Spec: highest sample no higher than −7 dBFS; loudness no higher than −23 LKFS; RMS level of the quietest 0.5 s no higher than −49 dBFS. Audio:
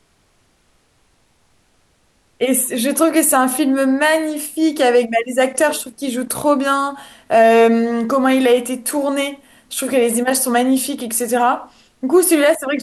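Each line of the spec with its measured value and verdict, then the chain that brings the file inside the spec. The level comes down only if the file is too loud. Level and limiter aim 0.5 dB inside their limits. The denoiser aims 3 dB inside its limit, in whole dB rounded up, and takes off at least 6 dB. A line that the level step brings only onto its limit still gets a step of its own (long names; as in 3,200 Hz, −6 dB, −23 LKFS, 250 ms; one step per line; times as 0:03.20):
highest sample −4.0 dBFS: out of spec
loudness −16.0 LKFS: out of spec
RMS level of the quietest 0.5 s −59 dBFS: in spec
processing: level −7.5 dB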